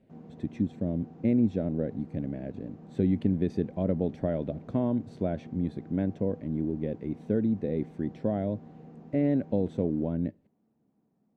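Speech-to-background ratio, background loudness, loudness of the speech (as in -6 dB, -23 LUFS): 18.0 dB, -48.5 LUFS, -30.5 LUFS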